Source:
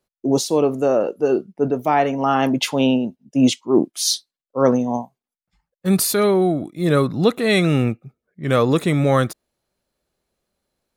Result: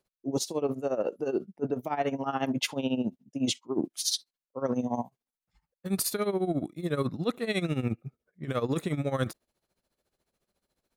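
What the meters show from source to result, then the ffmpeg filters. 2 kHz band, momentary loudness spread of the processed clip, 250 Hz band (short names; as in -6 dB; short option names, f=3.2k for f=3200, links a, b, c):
-12.0 dB, 6 LU, -12.0 dB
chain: -af "tremolo=f=14:d=0.81,areverse,acompressor=threshold=-26dB:ratio=6,areverse"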